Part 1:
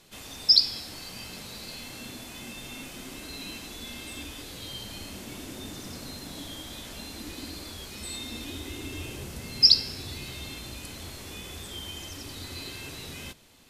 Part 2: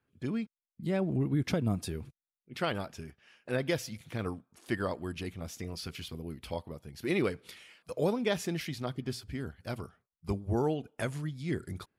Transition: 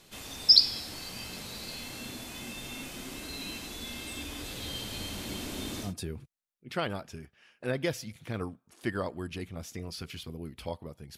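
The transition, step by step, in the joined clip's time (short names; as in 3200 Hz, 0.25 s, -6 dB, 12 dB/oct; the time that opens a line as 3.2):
part 1
4.14–5.94 echo with dull and thin repeats by turns 0.152 s, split 2200 Hz, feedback 87%, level -4 dB
5.87 switch to part 2 from 1.72 s, crossfade 0.14 s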